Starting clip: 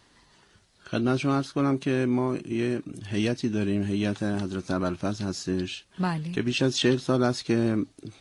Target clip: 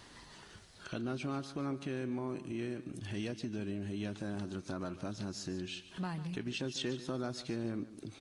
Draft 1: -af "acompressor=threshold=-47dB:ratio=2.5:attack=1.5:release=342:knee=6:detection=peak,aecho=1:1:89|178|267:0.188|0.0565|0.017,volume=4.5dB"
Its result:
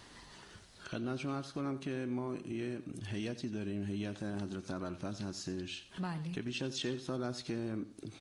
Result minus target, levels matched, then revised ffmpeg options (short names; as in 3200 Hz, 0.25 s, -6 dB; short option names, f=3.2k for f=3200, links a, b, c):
echo 58 ms early
-af "acompressor=threshold=-47dB:ratio=2.5:attack=1.5:release=342:knee=6:detection=peak,aecho=1:1:147|294|441:0.188|0.0565|0.017,volume=4.5dB"